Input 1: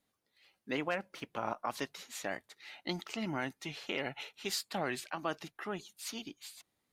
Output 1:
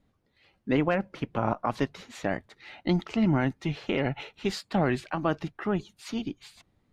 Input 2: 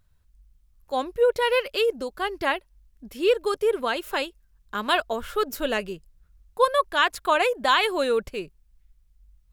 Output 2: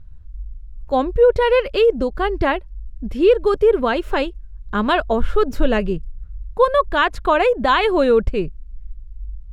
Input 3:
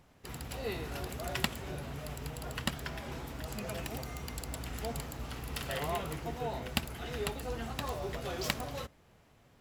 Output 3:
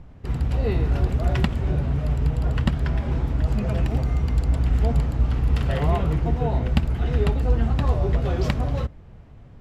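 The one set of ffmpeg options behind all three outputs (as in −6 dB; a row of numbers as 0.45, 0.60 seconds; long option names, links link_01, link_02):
-filter_complex "[0:a]aemphasis=mode=reproduction:type=riaa,asplit=2[link_01][link_02];[link_02]alimiter=limit=-16dB:level=0:latency=1:release=160,volume=2dB[link_03];[link_01][link_03]amix=inputs=2:normalize=0"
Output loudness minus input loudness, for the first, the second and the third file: +9.5, +6.5, +15.0 LU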